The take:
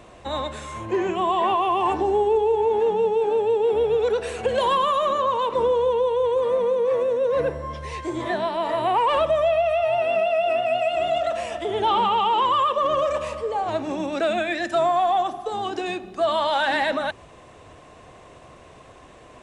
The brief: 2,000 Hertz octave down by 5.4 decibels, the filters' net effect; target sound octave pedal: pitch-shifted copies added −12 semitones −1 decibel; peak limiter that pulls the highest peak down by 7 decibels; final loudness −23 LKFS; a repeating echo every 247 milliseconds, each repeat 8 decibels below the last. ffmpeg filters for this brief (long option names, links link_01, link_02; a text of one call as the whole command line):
ffmpeg -i in.wav -filter_complex "[0:a]equalizer=frequency=2000:width_type=o:gain=-7.5,alimiter=limit=-20dB:level=0:latency=1,aecho=1:1:247|494|741|988|1235:0.398|0.159|0.0637|0.0255|0.0102,asplit=2[link_01][link_02];[link_02]asetrate=22050,aresample=44100,atempo=2,volume=-1dB[link_03];[link_01][link_03]amix=inputs=2:normalize=0,volume=1dB" out.wav